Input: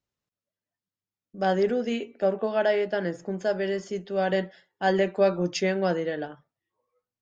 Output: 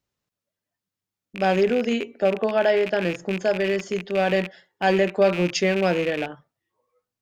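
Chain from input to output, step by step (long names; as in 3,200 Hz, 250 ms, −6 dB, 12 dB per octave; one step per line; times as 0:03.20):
loose part that buzzes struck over −41 dBFS, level −25 dBFS
in parallel at −2.5 dB: brickwall limiter −17.5 dBFS, peak gain reduction 7 dB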